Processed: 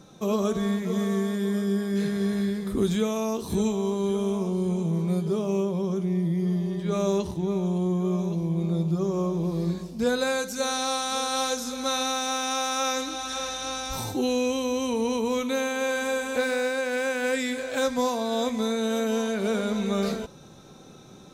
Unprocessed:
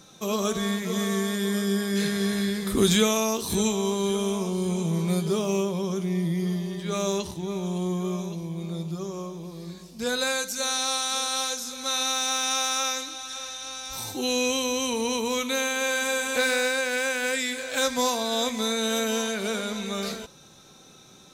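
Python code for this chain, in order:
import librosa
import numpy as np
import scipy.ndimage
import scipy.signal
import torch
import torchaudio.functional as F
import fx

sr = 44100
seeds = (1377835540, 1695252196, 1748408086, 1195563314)

y = fx.tilt_shelf(x, sr, db=6.0, hz=1300.0)
y = fx.rider(y, sr, range_db=10, speed_s=0.5)
y = F.gain(torch.from_numpy(y), -3.0).numpy()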